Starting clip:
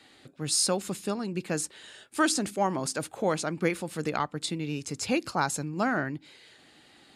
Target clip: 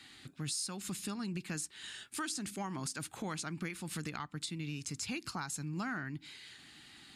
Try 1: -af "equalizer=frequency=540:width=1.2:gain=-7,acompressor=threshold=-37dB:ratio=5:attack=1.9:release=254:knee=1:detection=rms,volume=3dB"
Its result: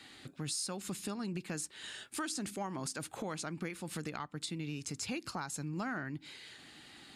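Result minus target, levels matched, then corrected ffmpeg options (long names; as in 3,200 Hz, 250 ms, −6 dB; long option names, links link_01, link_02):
500 Hz band +4.5 dB
-af "equalizer=frequency=540:width=1.2:gain=-17,acompressor=threshold=-37dB:ratio=5:attack=1.9:release=254:knee=1:detection=rms,volume=3dB"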